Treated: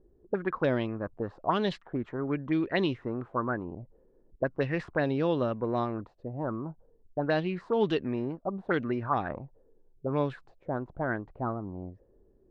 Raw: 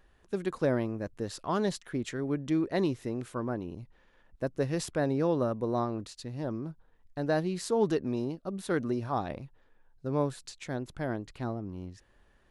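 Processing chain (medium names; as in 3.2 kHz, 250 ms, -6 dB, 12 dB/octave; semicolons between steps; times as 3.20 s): touch-sensitive low-pass 370–3200 Hz up, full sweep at -24.5 dBFS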